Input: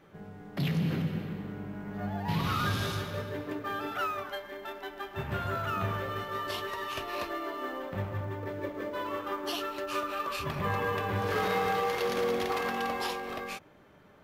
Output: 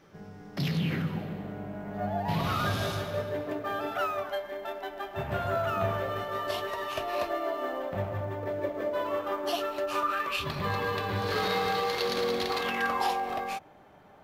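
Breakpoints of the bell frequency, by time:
bell +11.5 dB 0.47 oct
0.68 s 5400 Hz
1.23 s 660 Hz
9.89 s 660 Hz
10.48 s 4200 Hz
12.59 s 4200 Hz
13.05 s 770 Hz

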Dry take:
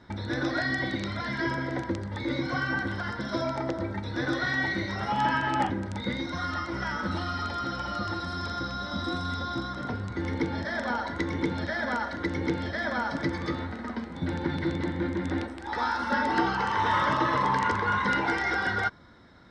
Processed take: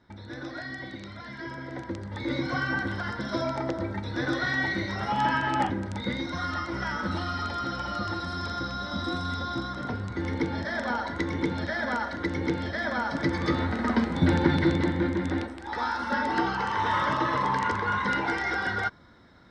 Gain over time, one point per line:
1.46 s -9 dB
2.33 s +0.5 dB
13.08 s +0.5 dB
14.02 s +10.5 dB
15.63 s -1 dB

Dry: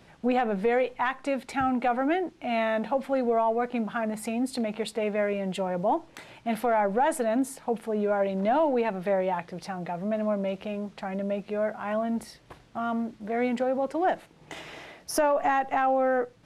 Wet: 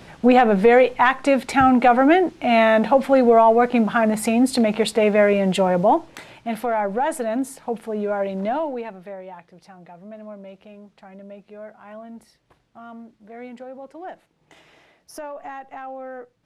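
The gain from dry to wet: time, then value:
5.7 s +11 dB
6.53 s +2 dB
8.43 s +2 dB
9.16 s -10.5 dB

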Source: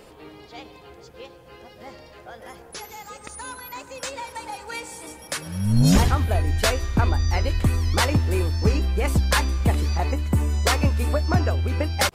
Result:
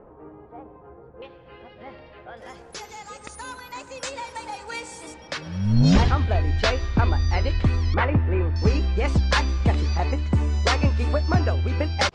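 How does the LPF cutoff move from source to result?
LPF 24 dB/oct
1300 Hz
from 1.22 s 3300 Hz
from 2.37 s 8600 Hz
from 5.14 s 5200 Hz
from 7.94 s 2400 Hz
from 8.56 s 6000 Hz

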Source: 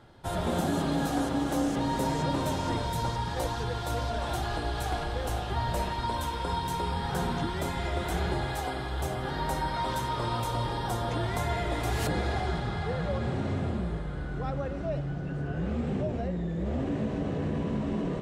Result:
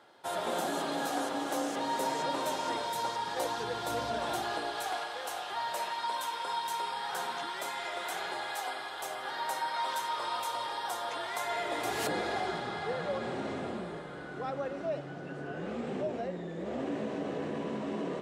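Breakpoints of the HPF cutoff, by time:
3.16 s 450 Hz
4.13 s 190 Hz
5.08 s 740 Hz
11.37 s 740 Hz
11.92 s 310 Hz

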